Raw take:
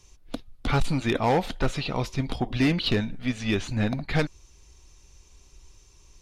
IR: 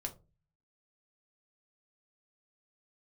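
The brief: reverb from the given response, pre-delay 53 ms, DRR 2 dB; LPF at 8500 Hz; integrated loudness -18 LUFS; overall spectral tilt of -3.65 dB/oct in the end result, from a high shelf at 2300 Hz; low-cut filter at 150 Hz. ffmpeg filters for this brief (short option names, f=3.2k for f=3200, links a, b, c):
-filter_complex "[0:a]highpass=150,lowpass=8.5k,highshelf=f=2.3k:g=7,asplit=2[a][b];[1:a]atrim=start_sample=2205,adelay=53[c];[b][c]afir=irnorm=-1:irlink=0,volume=-1dB[d];[a][d]amix=inputs=2:normalize=0,volume=5.5dB"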